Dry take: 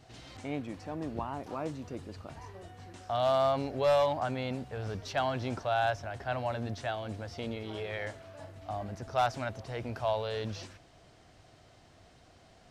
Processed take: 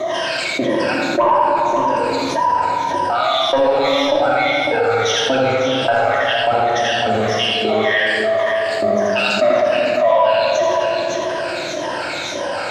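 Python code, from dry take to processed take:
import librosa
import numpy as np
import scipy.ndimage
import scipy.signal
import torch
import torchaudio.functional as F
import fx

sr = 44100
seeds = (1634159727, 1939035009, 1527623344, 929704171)

p1 = fx.spec_ripple(x, sr, per_octave=1.2, drift_hz=-1.8, depth_db=18)
p2 = fx.tilt_eq(p1, sr, slope=-3.5)
p3 = fx.rider(p2, sr, range_db=4, speed_s=0.5)
p4 = p2 + (p3 * 10.0 ** (-0.5 / 20.0))
p5 = fx.rotary_switch(p4, sr, hz=0.75, then_hz=7.0, switch_at_s=6.27)
p6 = fx.filter_lfo_highpass(p5, sr, shape='saw_up', hz=1.7, low_hz=510.0, high_hz=6900.0, q=1.9)
p7 = fx.fold_sine(p6, sr, drive_db=5, ceiling_db=-6.0)
p8 = fx.small_body(p7, sr, hz=(270.0, 1700.0, 3800.0), ring_ms=45, db=12, at=(9.23, 9.73))
p9 = p8 + fx.echo_multitap(p8, sr, ms=(83, 153, 552), db=(-3.5, -16.5, -11.0), dry=0)
p10 = fx.room_shoebox(p9, sr, seeds[0], volume_m3=1700.0, walls='mixed', distance_m=2.8)
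p11 = fx.env_flatten(p10, sr, amount_pct=70)
y = p11 * 10.0 ** (-7.0 / 20.0)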